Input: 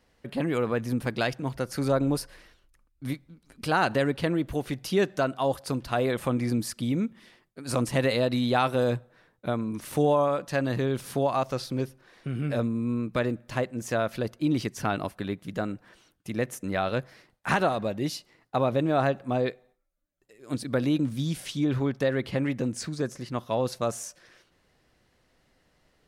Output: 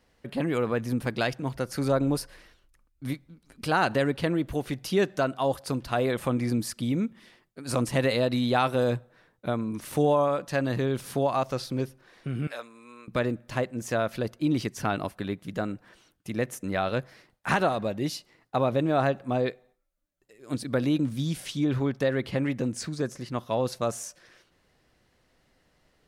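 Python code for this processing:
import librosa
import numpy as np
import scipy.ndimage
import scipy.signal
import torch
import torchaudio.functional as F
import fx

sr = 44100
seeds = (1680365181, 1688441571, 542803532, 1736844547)

y = fx.highpass(x, sr, hz=980.0, slope=12, at=(12.47, 13.08))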